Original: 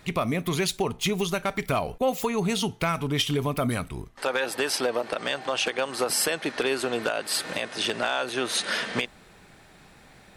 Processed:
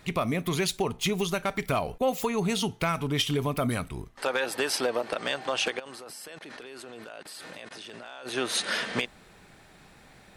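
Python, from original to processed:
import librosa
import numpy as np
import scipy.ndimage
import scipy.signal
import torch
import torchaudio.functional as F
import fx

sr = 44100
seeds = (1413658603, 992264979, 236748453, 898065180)

y = fx.level_steps(x, sr, step_db=21, at=(5.78, 8.25), fade=0.02)
y = y * 10.0 ** (-1.5 / 20.0)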